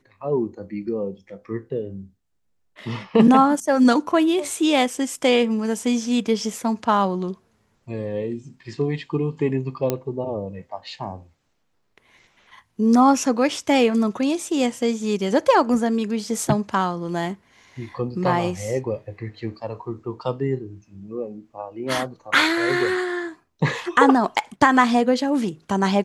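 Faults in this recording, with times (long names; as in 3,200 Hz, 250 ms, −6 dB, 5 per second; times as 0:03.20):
0:09.90: click −8 dBFS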